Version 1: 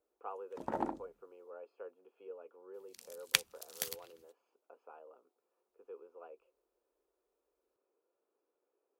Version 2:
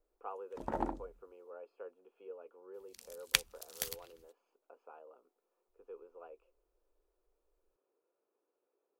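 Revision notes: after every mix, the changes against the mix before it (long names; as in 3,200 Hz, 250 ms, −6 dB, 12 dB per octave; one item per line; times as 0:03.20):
master: remove high-pass filter 120 Hz 12 dB per octave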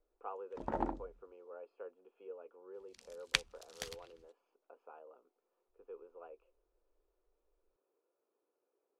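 master: add high-frequency loss of the air 82 metres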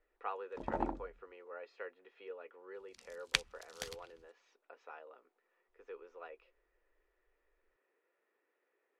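speech: remove moving average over 23 samples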